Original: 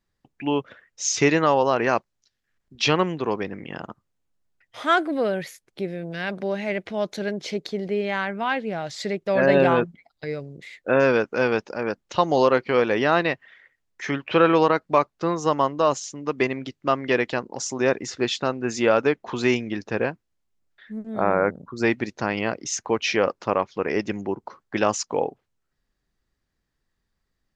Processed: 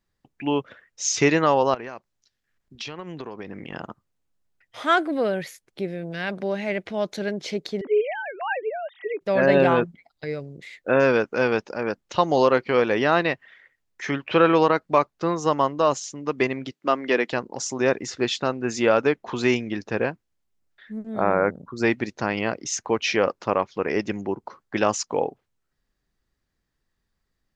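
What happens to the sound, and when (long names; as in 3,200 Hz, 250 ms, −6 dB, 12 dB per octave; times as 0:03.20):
0:01.74–0:03.73: downward compressor 20 to 1, threshold −30 dBFS
0:07.81–0:09.21: three sine waves on the formant tracks
0:16.72–0:17.32: high-pass filter 190 Hz 24 dB per octave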